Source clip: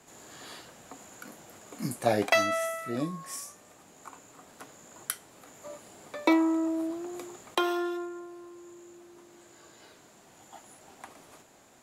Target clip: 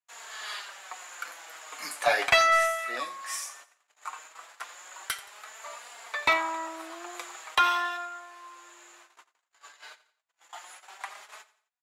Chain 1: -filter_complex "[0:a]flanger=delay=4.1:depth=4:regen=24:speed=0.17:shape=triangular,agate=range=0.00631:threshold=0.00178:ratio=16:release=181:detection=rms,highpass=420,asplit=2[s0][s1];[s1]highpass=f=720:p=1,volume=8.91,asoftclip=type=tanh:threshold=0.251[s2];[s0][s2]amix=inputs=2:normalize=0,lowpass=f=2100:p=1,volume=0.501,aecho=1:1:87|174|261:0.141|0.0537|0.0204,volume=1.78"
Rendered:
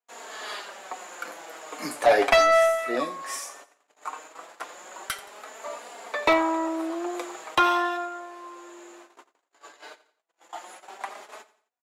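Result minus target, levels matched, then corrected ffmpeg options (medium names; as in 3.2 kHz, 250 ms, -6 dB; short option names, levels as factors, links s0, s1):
500 Hz band +6.0 dB
-filter_complex "[0:a]flanger=delay=4.1:depth=4:regen=24:speed=0.17:shape=triangular,agate=range=0.00631:threshold=0.00178:ratio=16:release=181:detection=rms,highpass=1200,asplit=2[s0][s1];[s1]highpass=f=720:p=1,volume=8.91,asoftclip=type=tanh:threshold=0.251[s2];[s0][s2]amix=inputs=2:normalize=0,lowpass=f=2100:p=1,volume=0.501,aecho=1:1:87|174|261:0.141|0.0537|0.0204,volume=1.78"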